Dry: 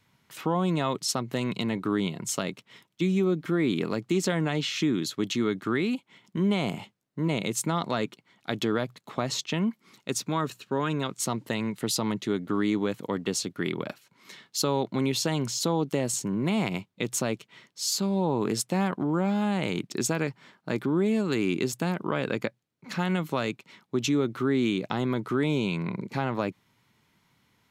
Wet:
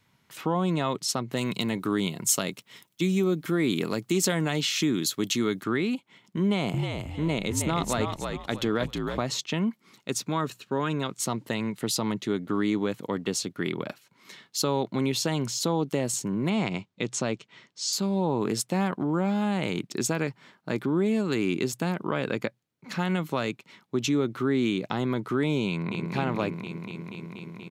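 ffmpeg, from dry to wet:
-filter_complex "[0:a]asettb=1/sr,asplit=3[s0][s1][s2];[s0]atrim=end=1.374[s3];[s1]atrim=start=1.37:end=5.64,asetpts=PTS-STARTPTS,afade=t=in:d=0.004:c=qsin,afade=t=out:st=4.266:d=0.004:c=qsin,aemphasis=mode=production:type=50kf[s4];[s2]atrim=start=5.636[s5];[s3][s4]acrossfade=d=0.004:c1=hsin:c2=qsin[s6];[s6][s5]acrossfade=d=0.004:c1=qsin:c2=hsin,asettb=1/sr,asplit=3[s7][s8][s9];[s7]atrim=end=6.424[s10];[s8]atrim=start=6.42:end=9.24,asetpts=PTS-STARTPTS,afade=t=in:d=0.004:c=qsin,afade=t=out:st=2.816:d=0.004:c=qsin,asplit=5[s11][s12][s13][s14][s15];[s12]adelay=315,afreqshift=-59,volume=0.596[s16];[s13]adelay=630,afreqshift=-118,volume=0.184[s17];[s14]adelay=945,afreqshift=-177,volume=0.0575[s18];[s15]adelay=1260,afreqshift=-236,volume=0.0178[s19];[s11][s16][s17][s18][s19]amix=inputs=5:normalize=0,atrim=end_sample=124362[s20];[s9]atrim=start=9.236[s21];[s10][s20]acrossfade=d=0.004:c1=hsin:c2=qsin[s22];[s22][s21]acrossfade=d=0.004:c1=qsin:c2=hsin,asettb=1/sr,asplit=3[s23][s24][s25];[s23]atrim=end=16.504[s26];[s24]atrim=start=16.5:end=17.93,asetpts=PTS-STARTPTS,afade=t=in:d=0.004:c=qsin,afade=t=out:st=1.426:d=0.004:c=qsin,lowpass=f=7700:w=0.5412,lowpass=f=7700:w=1.3066[s27];[s25]atrim=start=17.926[s28];[s26][s27]acrossfade=d=0.004:c1=hsin:c2=qsin[s29];[s29][s28]acrossfade=d=0.004:c1=qsin:c2=hsin,asplit=2[s30][s31];[s31]afade=t=in:st=25.67:d=0.01,afade=t=out:st=26.12:d=0.01,aecho=0:1:240|480|720|960|1200|1440|1680|1920|2160|2400|2640|2880:0.707946|0.601754|0.511491|0.434767|0.369552|0.314119|0.267001|0.226951|0.192909|0.163972|0.139376|0.11847[s32];[s30][s32]amix=inputs=2:normalize=0"

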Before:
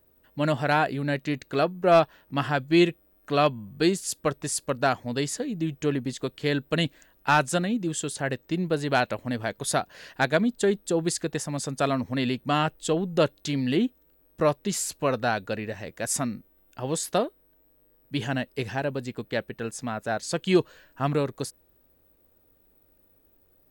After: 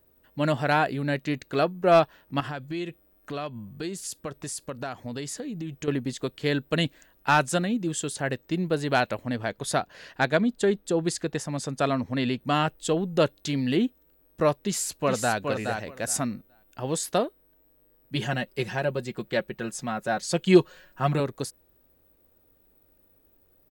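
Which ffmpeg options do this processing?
-filter_complex "[0:a]asettb=1/sr,asplit=3[s0][s1][s2];[s0]atrim=end=2.404[s3];[s1]atrim=start=2.4:end=5.88,asetpts=PTS-STARTPTS,afade=t=in:d=0.004:c=qsin,afade=t=out:st=3.476:d=0.004:c=qsin,acompressor=threshold=0.0282:ratio=4:attack=3.2:release=140:knee=1:detection=peak[s4];[s2]atrim=start=5.876[s5];[s3][s4]acrossfade=d=0.004:c1=hsin:c2=qsin[s6];[s6][s5]acrossfade=d=0.004:c1=qsin:c2=hsin,asettb=1/sr,asplit=3[s7][s8][s9];[s7]atrim=end=9.254[s10];[s8]atrim=start=9.25:end=12.41,asetpts=PTS-STARTPTS,afade=t=in:d=0.004:c=qsin,afade=t=out:st=3.156:d=0.004:c=qsin,highshelf=f=8500:g=-7.5[s11];[s9]atrim=start=12.406[s12];[s10][s11]acrossfade=d=0.004:c1=hsin:c2=qsin[s13];[s13][s12]acrossfade=d=0.004:c1=qsin:c2=hsin,asplit=2[s14][s15];[s15]afade=t=in:st=14.59:d=0.01,afade=t=out:st=15.37:d=0.01,aecho=0:1:420|840|1260:0.530884|0.0796327|0.0119449[s16];[s14][s16]amix=inputs=2:normalize=0,asettb=1/sr,asplit=3[s17][s18][s19];[s17]atrim=end=18.154[s20];[s18]atrim=start=18.15:end=21.2,asetpts=PTS-STARTPTS,afade=t=in:d=0.004:c=qsin,afade=t=out:st=3.046:d=0.004:c=qsin,aecho=1:1:5.5:0.65,atrim=end_sample=134505[s21];[s19]atrim=start=21.196[s22];[s20][s21]acrossfade=d=0.004:c1=hsin:c2=qsin[s23];[s23][s22]acrossfade=d=0.004:c1=qsin:c2=hsin"

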